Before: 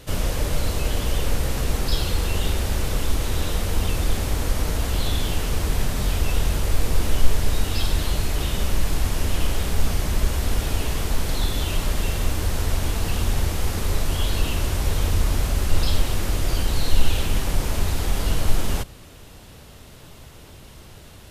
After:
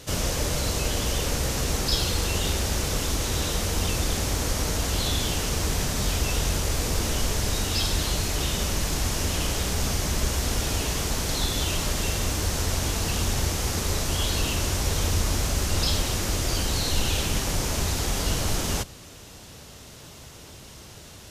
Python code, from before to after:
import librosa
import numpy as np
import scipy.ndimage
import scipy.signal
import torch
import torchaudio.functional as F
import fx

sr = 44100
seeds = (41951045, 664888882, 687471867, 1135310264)

y = fx.highpass(x, sr, hz=67.0, slope=6)
y = fx.peak_eq(y, sr, hz=6100.0, db=7.5, octaves=0.92)